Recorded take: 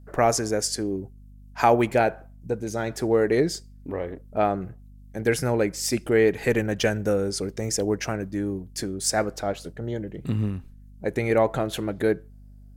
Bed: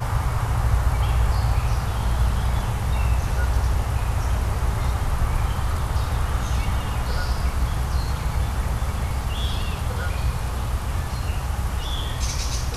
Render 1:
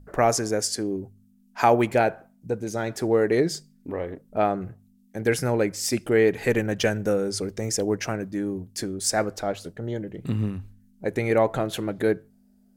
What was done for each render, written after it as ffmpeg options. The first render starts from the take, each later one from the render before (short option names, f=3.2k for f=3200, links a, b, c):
-af "bandreject=f=50:t=h:w=4,bandreject=f=100:t=h:w=4,bandreject=f=150:t=h:w=4"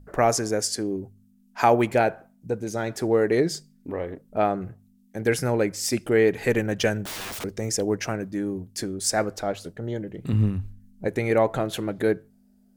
-filter_complex "[0:a]asettb=1/sr,asplit=3[a][b][c];[a]atrim=end=7.044[d];[b]atrim=start=7.04:end=7.44,asetpts=PTS-STARTPTS,afade=t=in:d=0.004:c=qsin,afade=t=out:st=0.396:d=0.004:c=qsin,aeval=exprs='(mod(29.9*val(0)+1,2)-1)/29.9':c=same[e];[c]atrim=start=7.436[f];[d][e]acrossfade=d=0.004:c1=hsin:c2=qsin[g];[g][f]acrossfade=d=0.004:c1=qsin:c2=hsin,asettb=1/sr,asplit=3[h][i][j];[h]atrim=end=10.334[k];[i]atrim=start=10.33:end=11.08,asetpts=PTS-STARTPTS,afade=t=in:d=0.004:c=qsin,afade=t=out:st=0.746:d=0.004:c=qsin,lowshelf=f=140:g=9.5[l];[j]atrim=start=11.076[m];[k][l]acrossfade=d=0.004:c1=hsin:c2=qsin[n];[n][m]acrossfade=d=0.004:c1=qsin:c2=hsin"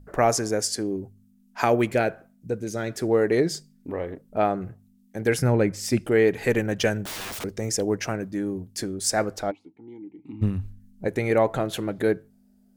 -filter_complex "[0:a]asettb=1/sr,asplit=3[a][b][c];[a]atrim=end=1.644[d];[b]atrim=start=1.64:end=3.09,asetpts=PTS-STARTPTS,afade=t=in:d=0.004:c=qsin,afade=t=out:st=1.446:d=0.004:c=qsin,equalizer=f=860:t=o:w=0.58:g=-8[e];[c]atrim=start=3.086[f];[d][e]acrossfade=d=0.004:c1=hsin:c2=qsin[g];[g][f]acrossfade=d=0.004:c1=qsin:c2=hsin,asettb=1/sr,asplit=3[h][i][j];[h]atrim=end=5.424[k];[i]atrim=start=5.42:end=6.05,asetpts=PTS-STARTPTS,afade=t=in:d=0.004:c=qsin,afade=t=out:st=0.626:d=0.004:c=qsin,bass=f=250:g=7,treble=f=4k:g=-5[l];[j]atrim=start=6.046[m];[k][l]acrossfade=d=0.004:c1=hsin:c2=qsin[n];[n][m]acrossfade=d=0.004:c1=qsin:c2=hsin,asplit=3[o][p][q];[o]afade=t=out:st=9.5:d=0.02[r];[p]asplit=3[s][t][u];[s]bandpass=f=300:t=q:w=8,volume=0dB[v];[t]bandpass=f=870:t=q:w=8,volume=-6dB[w];[u]bandpass=f=2.24k:t=q:w=8,volume=-9dB[x];[v][w][x]amix=inputs=3:normalize=0,afade=t=in:st=9.5:d=0.02,afade=t=out:st=10.41:d=0.02[y];[q]afade=t=in:st=10.41:d=0.02[z];[r][y][z]amix=inputs=3:normalize=0"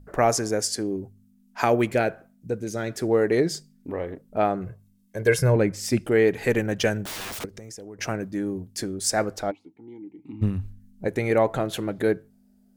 -filter_complex "[0:a]asettb=1/sr,asplit=3[a][b][c];[a]atrim=end=4.664[d];[b]atrim=start=4.66:end=5.56,asetpts=PTS-STARTPTS,afade=t=in:d=0.004:c=qsin,afade=t=out:st=0.896:d=0.004:c=qsin,aecho=1:1:1.9:0.65,atrim=end_sample=39690[e];[c]atrim=start=5.556[f];[d][e]acrossfade=d=0.004:c1=hsin:c2=qsin[g];[g][f]acrossfade=d=0.004:c1=qsin:c2=hsin,asettb=1/sr,asplit=3[h][i][j];[h]atrim=end=7.454[k];[i]atrim=start=7.45:end=7.99,asetpts=PTS-STARTPTS,afade=t=in:d=0.004:c=qsin,afade=t=out:st=0.536:d=0.004:c=qsin,acompressor=threshold=-38dB:ratio=6:attack=3.2:release=140:knee=1:detection=peak[l];[j]atrim=start=7.986[m];[k][l]acrossfade=d=0.004:c1=hsin:c2=qsin[n];[n][m]acrossfade=d=0.004:c1=qsin:c2=hsin"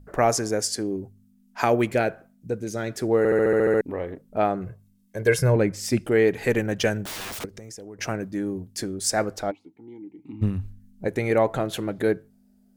-filter_complex "[0:a]asplit=10[a][b][c][d][e][f][g][h][i][j];[a]atrim=end=3.252[k];[b]atrim=start=3.178:end=3.252[l];[c]atrim=start=3.178:end=3.252[m];[d]atrim=start=3.178:end=3.252[n];[e]atrim=start=3.178:end=3.252[o];[f]atrim=start=3.178:end=3.252[p];[g]atrim=start=3.178:end=3.252[q];[h]atrim=start=3.178:end=3.252[r];[i]atrim=start=3.178:end=3.252[s];[j]atrim=start=3.808[t];[k][l]acrossfade=d=0.004:c1=hsin:c2=hsin[u];[u][m]acrossfade=d=0.004:c1=hsin:c2=hsin[v];[v][n]acrossfade=d=0.004:c1=hsin:c2=hsin[w];[w][o]acrossfade=d=0.004:c1=hsin:c2=hsin[x];[x][p]acrossfade=d=0.004:c1=hsin:c2=hsin[y];[y][q]acrossfade=d=0.004:c1=hsin:c2=hsin[z];[z][r]acrossfade=d=0.004:c1=hsin:c2=hsin[aa];[aa][s]acrossfade=d=0.004:c1=hsin:c2=hsin[ab];[ab][t]acrossfade=d=0.004:c1=hsin:c2=hsin"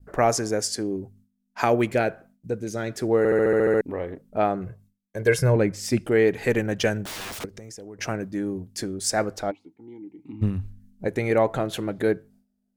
-af "agate=range=-33dB:threshold=-49dB:ratio=3:detection=peak,highshelf=f=11k:g=-4"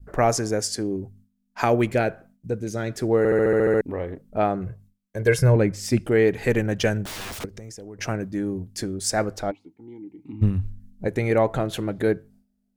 -af "lowshelf=f=110:g=8.5"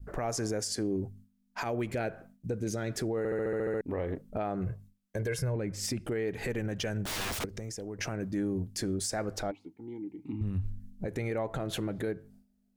-af "acompressor=threshold=-25dB:ratio=6,alimiter=limit=-24dB:level=0:latency=1:release=64"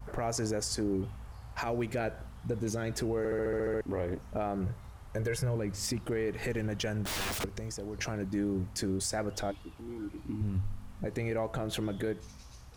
-filter_complex "[1:a]volume=-26dB[a];[0:a][a]amix=inputs=2:normalize=0"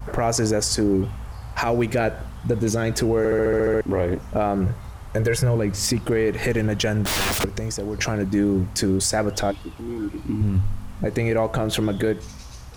-af "volume=11.5dB"